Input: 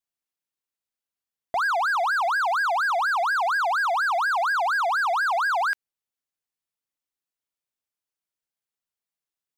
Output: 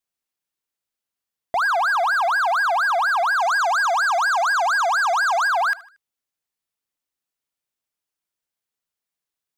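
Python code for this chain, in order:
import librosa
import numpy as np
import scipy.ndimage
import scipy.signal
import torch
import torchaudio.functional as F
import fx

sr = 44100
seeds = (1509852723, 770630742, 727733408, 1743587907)

y = fx.peak_eq(x, sr, hz=6500.0, db=12.0, octaves=0.54, at=(3.4, 5.48))
y = fx.echo_feedback(y, sr, ms=77, feedback_pct=42, wet_db=-21)
y = y * librosa.db_to_amplitude(3.5)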